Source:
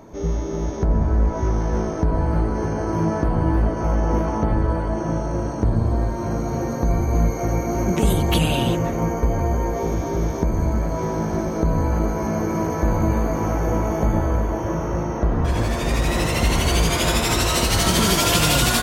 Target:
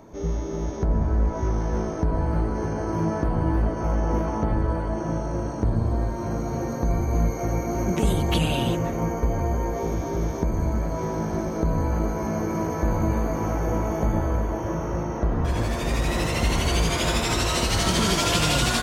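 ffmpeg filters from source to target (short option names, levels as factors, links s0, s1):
-filter_complex "[0:a]acrossover=split=9100[s0][s1];[s1]acompressor=threshold=0.00891:ratio=4:attack=1:release=60[s2];[s0][s2]amix=inputs=2:normalize=0,volume=0.668"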